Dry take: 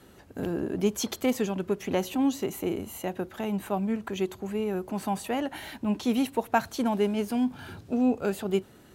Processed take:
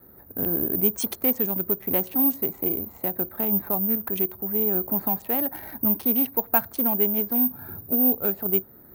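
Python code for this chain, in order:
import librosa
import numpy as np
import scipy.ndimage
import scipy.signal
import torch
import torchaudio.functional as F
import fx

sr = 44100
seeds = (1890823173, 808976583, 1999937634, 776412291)

y = fx.wiener(x, sr, points=15)
y = fx.recorder_agc(y, sr, target_db=-18.5, rise_db_per_s=7.8, max_gain_db=30)
y = (np.kron(scipy.signal.resample_poly(y, 1, 3), np.eye(3)[0]) * 3)[:len(y)]
y = F.gain(torch.from_numpy(y), -1.5).numpy()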